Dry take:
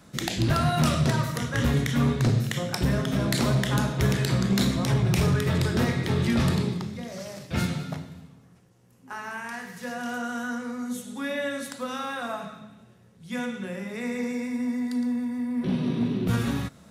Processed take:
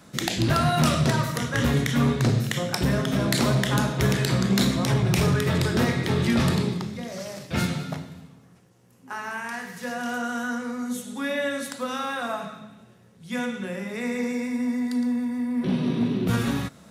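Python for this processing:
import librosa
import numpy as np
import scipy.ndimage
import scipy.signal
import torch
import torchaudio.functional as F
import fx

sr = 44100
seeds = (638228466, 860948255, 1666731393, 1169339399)

y = fx.low_shelf(x, sr, hz=88.0, db=-8.0)
y = y * librosa.db_to_amplitude(3.0)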